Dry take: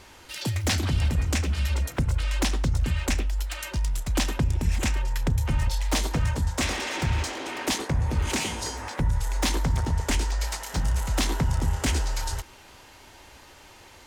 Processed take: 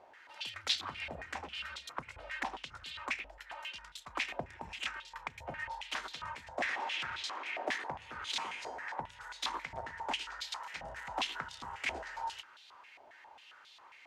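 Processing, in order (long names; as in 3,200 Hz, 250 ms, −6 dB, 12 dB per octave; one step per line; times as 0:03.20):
band-pass on a step sequencer 7.4 Hz 680–3,700 Hz
level +2.5 dB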